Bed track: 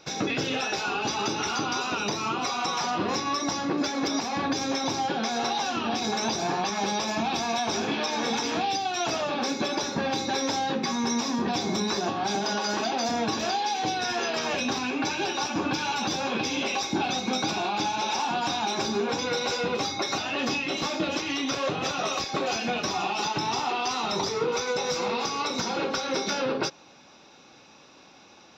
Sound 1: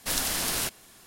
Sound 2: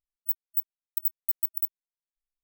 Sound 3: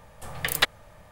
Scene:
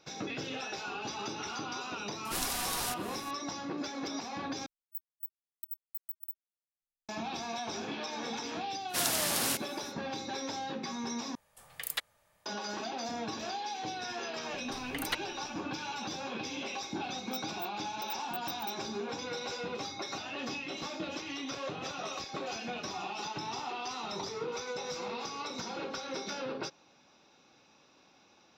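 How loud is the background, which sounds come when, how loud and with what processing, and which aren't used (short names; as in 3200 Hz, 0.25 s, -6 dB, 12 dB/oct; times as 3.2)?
bed track -10.5 dB
2.25 add 1 -7 dB + upward compressor 4:1, threshold -35 dBFS
4.66 replace with 2 -14 dB
8.88 add 1 -2.5 dB, fades 0.05 s + HPF 93 Hz 24 dB/oct
11.35 replace with 3 -17 dB + tilt +2.5 dB/oct
14.5 add 3 -13 dB + ripple EQ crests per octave 1.9, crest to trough 8 dB
17.05 add 2 -9 dB + limiter -25 dBFS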